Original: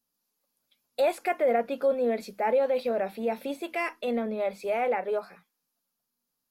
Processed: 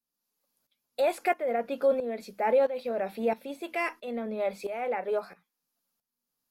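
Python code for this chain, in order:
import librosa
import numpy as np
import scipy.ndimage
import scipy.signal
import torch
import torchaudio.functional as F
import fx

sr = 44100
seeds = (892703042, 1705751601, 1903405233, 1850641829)

y = fx.tremolo_shape(x, sr, shape='saw_up', hz=1.5, depth_pct=75)
y = F.gain(torch.from_numpy(y), 2.0).numpy()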